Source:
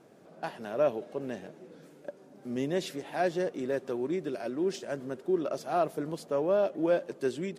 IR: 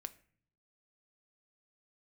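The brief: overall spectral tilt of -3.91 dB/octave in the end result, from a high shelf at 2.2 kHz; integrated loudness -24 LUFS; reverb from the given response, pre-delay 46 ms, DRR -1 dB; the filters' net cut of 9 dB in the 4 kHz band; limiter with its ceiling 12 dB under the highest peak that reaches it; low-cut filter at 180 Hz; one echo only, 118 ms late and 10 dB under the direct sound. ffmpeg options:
-filter_complex "[0:a]highpass=180,highshelf=f=2200:g=-6.5,equalizer=f=4000:t=o:g=-5.5,alimiter=level_in=1.5:limit=0.0631:level=0:latency=1,volume=0.668,aecho=1:1:118:0.316,asplit=2[s0][s1];[1:a]atrim=start_sample=2205,adelay=46[s2];[s1][s2]afir=irnorm=-1:irlink=0,volume=1.78[s3];[s0][s3]amix=inputs=2:normalize=0,volume=2.82"

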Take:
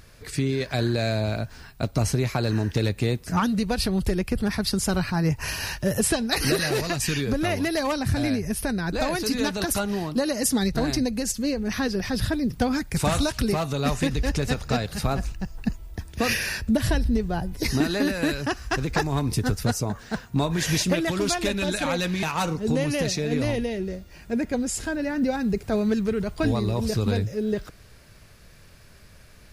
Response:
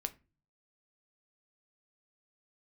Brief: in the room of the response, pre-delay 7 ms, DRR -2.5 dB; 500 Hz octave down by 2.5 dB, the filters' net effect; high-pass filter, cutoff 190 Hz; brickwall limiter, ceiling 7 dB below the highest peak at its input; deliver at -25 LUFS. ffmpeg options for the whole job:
-filter_complex "[0:a]highpass=190,equalizer=f=500:t=o:g=-3,alimiter=limit=0.126:level=0:latency=1,asplit=2[s0][s1];[1:a]atrim=start_sample=2205,adelay=7[s2];[s1][s2]afir=irnorm=-1:irlink=0,volume=1.41[s3];[s0][s3]amix=inputs=2:normalize=0,volume=0.891"

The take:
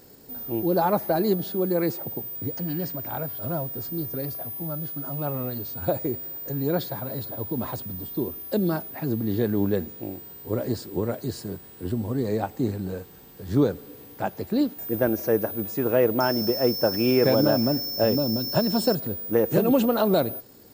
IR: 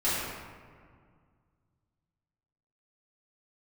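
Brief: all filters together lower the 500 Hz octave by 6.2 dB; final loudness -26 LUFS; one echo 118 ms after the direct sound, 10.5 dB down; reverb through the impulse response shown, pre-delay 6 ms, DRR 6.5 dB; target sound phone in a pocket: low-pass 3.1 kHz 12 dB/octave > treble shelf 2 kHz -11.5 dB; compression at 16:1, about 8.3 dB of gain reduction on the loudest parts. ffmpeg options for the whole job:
-filter_complex "[0:a]equalizer=f=500:t=o:g=-7,acompressor=threshold=0.0501:ratio=16,aecho=1:1:118:0.299,asplit=2[s0][s1];[1:a]atrim=start_sample=2205,adelay=6[s2];[s1][s2]afir=irnorm=-1:irlink=0,volume=0.126[s3];[s0][s3]amix=inputs=2:normalize=0,lowpass=3100,highshelf=f=2000:g=-11.5,volume=2.24"

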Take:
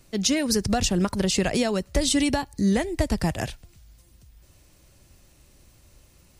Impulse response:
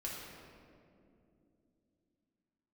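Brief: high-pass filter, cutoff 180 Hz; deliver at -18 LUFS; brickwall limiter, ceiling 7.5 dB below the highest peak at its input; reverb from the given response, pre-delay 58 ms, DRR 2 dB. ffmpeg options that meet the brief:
-filter_complex "[0:a]highpass=180,alimiter=limit=0.141:level=0:latency=1,asplit=2[s0][s1];[1:a]atrim=start_sample=2205,adelay=58[s2];[s1][s2]afir=irnorm=-1:irlink=0,volume=0.75[s3];[s0][s3]amix=inputs=2:normalize=0,volume=2.24"

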